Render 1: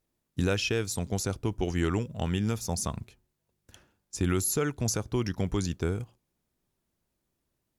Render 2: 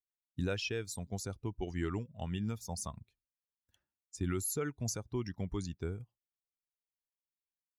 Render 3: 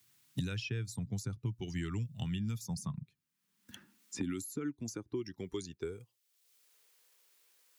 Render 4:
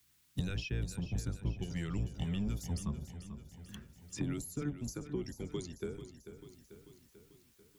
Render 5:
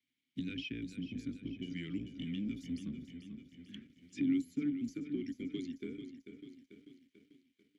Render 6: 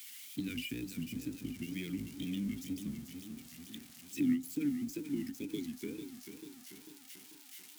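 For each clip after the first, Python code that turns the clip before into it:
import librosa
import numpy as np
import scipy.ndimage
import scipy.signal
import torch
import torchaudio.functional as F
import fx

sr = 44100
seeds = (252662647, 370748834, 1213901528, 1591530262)

y1 = fx.bin_expand(x, sr, power=1.5)
y1 = y1 * 10.0 ** (-6.0 / 20.0)
y2 = fx.peak_eq(y1, sr, hz=620.0, db=-14.0, octaves=1.1)
y2 = fx.filter_sweep_highpass(y2, sr, from_hz=120.0, to_hz=500.0, start_s=2.24, end_s=6.24, q=3.8)
y2 = fx.band_squash(y2, sr, depth_pct=100)
y2 = y2 * 10.0 ** (-2.5 / 20.0)
y3 = fx.octave_divider(y2, sr, octaves=1, level_db=0.0)
y3 = fx.echo_feedback(y3, sr, ms=441, feedback_pct=58, wet_db=-11.5)
y3 = y3 * 10.0 ** (-1.5 / 20.0)
y4 = fx.leveller(y3, sr, passes=2)
y4 = fx.vowel_filter(y4, sr, vowel='i')
y4 = y4 * 10.0 ** (5.0 / 20.0)
y5 = y4 + 0.5 * 10.0 ** (-41.0 / 20.0) * np.diff(np.sign(y4), prepend=np.sign(y4[:1]))
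y5 = fx.wow_flutter(y5, sr, seeds[0], rate_hz=2.1, depth_cents=140.0)
y5 = fx.end_taper(y5, sr, db_per_s=190.0)
y5 = y5 * 10.0 ** (1.5 / 20.0)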